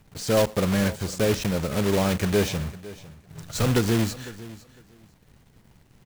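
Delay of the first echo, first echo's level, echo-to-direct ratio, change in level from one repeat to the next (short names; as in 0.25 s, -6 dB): 0.504 s, -18.0 dB, -18.0 dB, -14.5 dB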